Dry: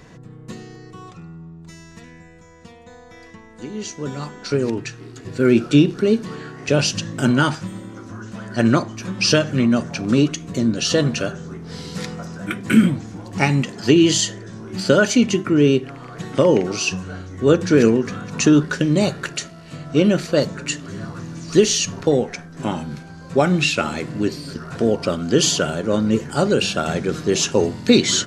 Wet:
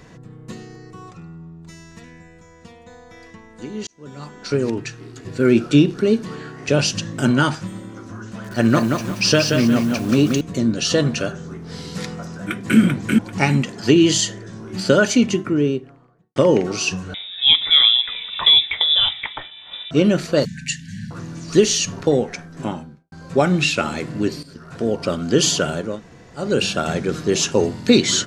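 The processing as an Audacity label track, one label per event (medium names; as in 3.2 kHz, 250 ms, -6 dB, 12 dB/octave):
0.650000	1.160000	peaking EQ 3.3 kHz -6 dB 0.44 oct
3.870000	4.530000	fade in
8.260000	10.410000	bit-crushed delay 179 ms, feedback 35%, word length 6-bit, level -4 dB
12.340000	12.790000	echo throw 390 ms, feedback 25%, level -2.5 dB
15.130000	16.360000	studio fade out
17.140000	19.910000	frequency inversion carrier 3.7 kHz
20.450000	21.110000	brick-wall FIR band-stop 260–1500 Hz
22.510000	23.120000	studio fade out
24.430000	25.160000	fade in, from -12.5 dB
25.900000	26.450000	room tone, crossfade 0.24 s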